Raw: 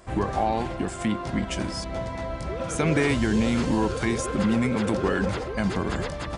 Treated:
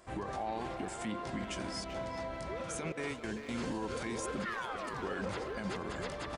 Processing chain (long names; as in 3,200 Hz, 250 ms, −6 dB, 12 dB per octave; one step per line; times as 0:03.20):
0:02.92–0:03.49: noise gate with hold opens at −11 dBFS
low-shelf EQ 190 Hz −8 dB
brickwall limiter −21.5 dBFS, peak gain reduction 10 dB
0:04.44–0:05.01: ring modulation 1,700 Hz → 610 Hz
far-end echo of a speakerphone 390 ms, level −6 dB
level −7 dB